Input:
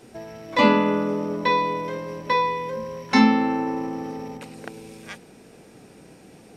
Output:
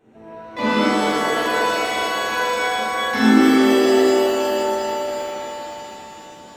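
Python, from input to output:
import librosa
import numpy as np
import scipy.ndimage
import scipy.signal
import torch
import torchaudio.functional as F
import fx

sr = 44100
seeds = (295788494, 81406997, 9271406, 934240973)

y = fx.wiener(x, sr, points=9)
y = fx.rev_shimmer(y, sr, seeds[0], rt60_s=3.5, semitones=7, shimmer_db=-2, drr_db=-10.0)
y = y * 10.0 ** (-10.0 / 20.0)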